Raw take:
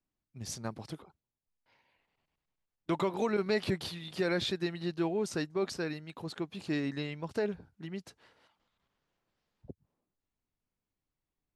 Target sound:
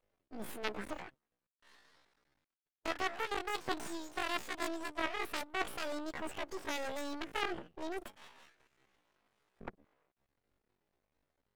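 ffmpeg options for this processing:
-af "aeval=exprs='0.126*(cos(1*acos(clip(val(0)/0.126,-1,1)))-cos(1*PI/2))+0.0447*(cos(7*acos(clip(val(0)/0.126,-1,1)))-cos(7*PI/2))+0.00891*(cos(8*acos(clip(val(0)/0.126,-1,1)))-cos(8*PI/2))':c=same,areverse,acompressor=threshold=-38dB:ratio=6,areverse,aeval=exprs='max(val(0),0)':c=same,asetrate=85689,aresample=44100,atempo=0.514651,bass=f=250:g=-5,treble=f=4k:g=-11,volume=10.5dB"

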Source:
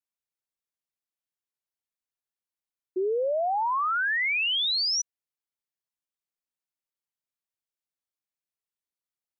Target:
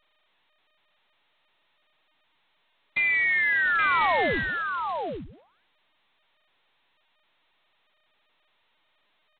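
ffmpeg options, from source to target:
-af "acontrast=42,aeval=exprs='val(0)*sin(2*PI*170*n/s)':c=same,aecho=1:1:822:0.501,lowpass=f=2.2k:t=q:w=0.5098,lowpass=f=2.2k:t=q:w=0.6013,lowpass=f=2.2k:t=q:w=0.9,lowpass=f=2.2k:t=q:w=2.563,afreqshift=-2600" -ar 8000 -c:a adpcm_g726 -b:a 16k

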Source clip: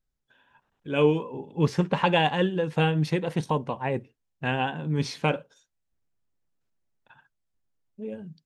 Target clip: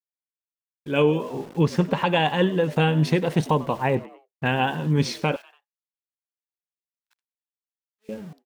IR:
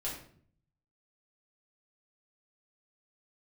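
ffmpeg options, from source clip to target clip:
-filter_complex "[0:a]aeval=exprs='val(0)*gte(abs(val(0)),0.00447)':c=same,asettb=1/sr,asplit=3[a][b][c];[a]atrim=end=3.954[d];[b]atrim=start=3.95:end=4.46,asetpts=PTS-STARTPTS,afade=t=in:d=0.004:c=qsin,afade=t=out:st=0.506:d=0.004:c=qsin,highshelf=f=3.7k:g=-9.5[e];[c]atrim=start=4.456[f];[d][e]acrossfade=d=0.004:c1=hsin:c2=qsin[g];[g][f]acrossfade=d=0.004:c1=qsin:c2=hsin,asplit=4[h][i][j][k];[i]adelay=95,afreqshift=92,volume=-20dB[l];[j]adelay=190,afreqshift=184,volume=-27.1dB[m];[k]adelay=285,afreqshift=276,volume=-34.3dB[n];[h][l][m][n]amix=inputs=4:normalize=0,dynaudnorm=f=160:g=11:m=7dB,asettb=1/sr,asplit=3[o][p][q];[o]atrim=end=5.364[r];[p]atrim=start=5.36:end=8.09,asetpts=PTS-STARTPTS,afade=t=in:d=0.004:c=qsin,afade=t=out:st=2.726:d=0.004:c=qsin,highpass=1.4k[s];[q]atrim=start=8.086[t];[r][s]acrossfade=d=0.004:c1=hsin:c2=qsin[u];[u][t]acrossfade=d=0.004:c1=qsin:c2=hsin,agate=range=-33dB:threshold=-42dB:ratio=3:detection=peak,alimiter=limit=-8.5dB:level=0:latency=1:release=308"

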